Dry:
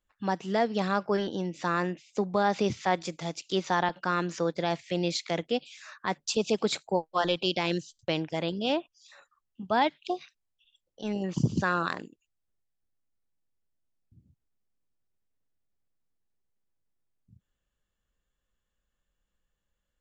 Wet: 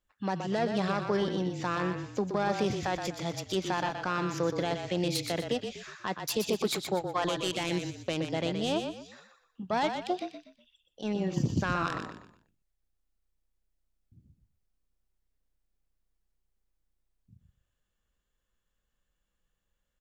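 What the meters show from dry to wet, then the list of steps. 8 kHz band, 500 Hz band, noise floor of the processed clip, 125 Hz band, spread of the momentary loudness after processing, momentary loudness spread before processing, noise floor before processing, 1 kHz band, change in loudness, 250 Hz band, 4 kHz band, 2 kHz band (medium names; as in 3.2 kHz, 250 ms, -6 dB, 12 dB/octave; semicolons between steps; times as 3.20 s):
+0.5 dB, -2.0 dB, -81 dBFS, 0.0 dB, 9 LU, 8 LU, -83 dBFS, -3.0 dB, -2.0 dB, -1.0 dB, -2.0 dB, -3.0 dB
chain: self-modulated delay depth 0.1 ms; peak limiter -18.5 dBFS, peak gain reduction 6.5 dB; frequency-shifting echo 122 ms, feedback 33%, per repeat -31 Hz, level -6.5 dB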